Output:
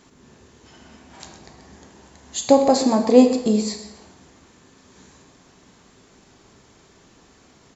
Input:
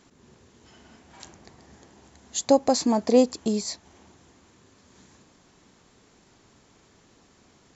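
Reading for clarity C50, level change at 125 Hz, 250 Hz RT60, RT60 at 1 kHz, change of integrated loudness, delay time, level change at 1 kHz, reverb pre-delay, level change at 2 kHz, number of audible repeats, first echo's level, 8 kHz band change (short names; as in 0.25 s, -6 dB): 7.0 dB, +6.0 dB, 0.85 s, 0.85 s, +5.5 dB, 0.126 s, +5.5 dB, 6 ms, +5.5 dB, 1, -13.0 dB, n/a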